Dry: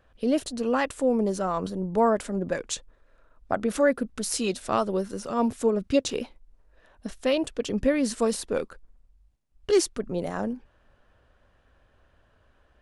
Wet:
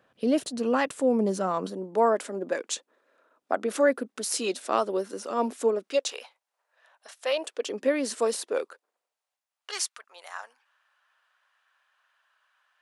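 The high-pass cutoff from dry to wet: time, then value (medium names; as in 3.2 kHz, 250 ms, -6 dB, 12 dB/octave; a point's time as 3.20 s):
high-pass 24 dB/octave
1.29 s 130 Hz
1.88 s 270 Hz
5.70 s 270 Hz
6.19 s 690 Hz
7.07 s 690 Hz
7.78 s 310 Hz
8.37 s 310 Hz
9.96 s 1 kHz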